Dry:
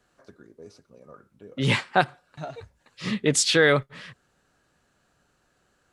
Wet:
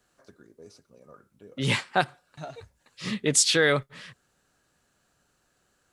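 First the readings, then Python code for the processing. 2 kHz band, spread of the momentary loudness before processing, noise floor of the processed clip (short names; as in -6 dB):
-2.5 dB, 21 LU, -71 dBFS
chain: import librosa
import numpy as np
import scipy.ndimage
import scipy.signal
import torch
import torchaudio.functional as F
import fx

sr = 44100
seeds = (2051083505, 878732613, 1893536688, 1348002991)

y = fx.high_shelf(x, sr, hz=5200.0, db=8.5)
y = y * librosa.db_to_amplitude(-3.5)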